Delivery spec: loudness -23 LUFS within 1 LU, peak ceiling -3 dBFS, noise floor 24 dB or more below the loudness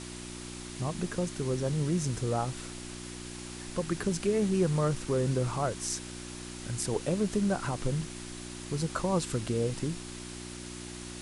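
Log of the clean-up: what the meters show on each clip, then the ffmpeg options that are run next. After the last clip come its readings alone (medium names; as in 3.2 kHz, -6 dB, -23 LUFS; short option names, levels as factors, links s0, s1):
hum 60 Hz; highest harmonic 360 Hz; hum level -41 dBFS; noise floor -42 dBFS; noise floor target -57 dBFS; loudness -32.5 LUFS; peak level -15.0 dBFS; loudness target -23.0 LUFS
-> -af "bandreject=f=60:t=h:w=4,bandreject=f=120:t=h:w=4,bandreject=f=180:t=h:w=4,bandreject=f=240:t=h:w=4,bandreject=f=300:t=h:w=4,bandreject=f=360:t=h:w=4"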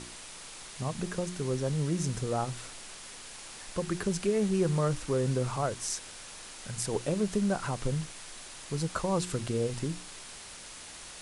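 hum not found; noise floor -46 dBFS; noise floor target -56 dBFS
-> -af "afftdn=nr=10:nf=-46"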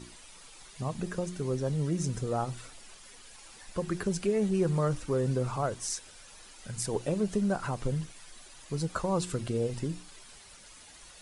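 noise floor -52 dBFS; noise floor target -56 dBFS
-> -af "afftdn=nr=6:nf=-52"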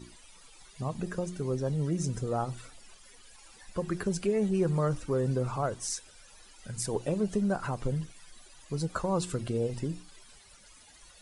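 noise floor -56 dBFS; loudness -32.0 LUFS; peak level -16.0 dBFS; loudness target -23.0 LUFS
-> -af "volume=2.82"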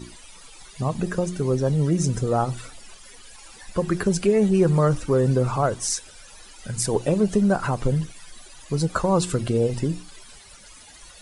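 loudness -23.0 LUFS; peak level -7.0 dBFS; noise floor -47 dBFS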